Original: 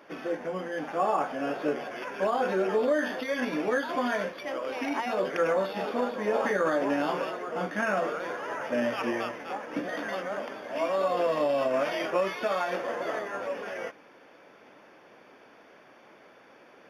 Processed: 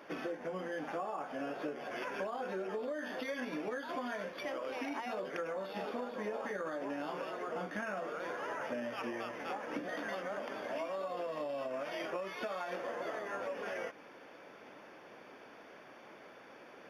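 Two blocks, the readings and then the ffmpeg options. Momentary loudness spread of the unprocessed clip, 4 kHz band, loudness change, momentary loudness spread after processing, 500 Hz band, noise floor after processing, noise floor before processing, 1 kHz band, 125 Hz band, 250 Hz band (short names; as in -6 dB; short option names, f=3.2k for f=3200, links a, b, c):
8 LU, -8.5 dB, -10.0 dB, 15 LU, -10.5 dB, -55 dBFS, -55 dBFS, -10.0 dB, -9.5 dB, -10.0 dB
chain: -af "acompressor=threshold=-36dB:ratio=10"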